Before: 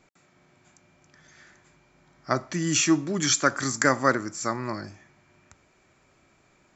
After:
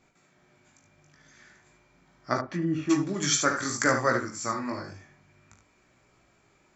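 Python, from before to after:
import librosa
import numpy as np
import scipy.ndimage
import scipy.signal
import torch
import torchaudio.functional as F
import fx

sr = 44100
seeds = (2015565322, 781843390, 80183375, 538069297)

y = fx.chorus_voices(x, sr, voices=2, hz=0.5, base_ms=19, depth_ms=2.6, mix_pct=40)
y = fx.room_early_taps(y, sr, ms=(41, 73), db=(-10.0, -7.0))
y = fx.env_lowpass_down(y, sr, base_hz=1000.0, full_db=-24.0, at=(2.4, 2.89), fade=0.02)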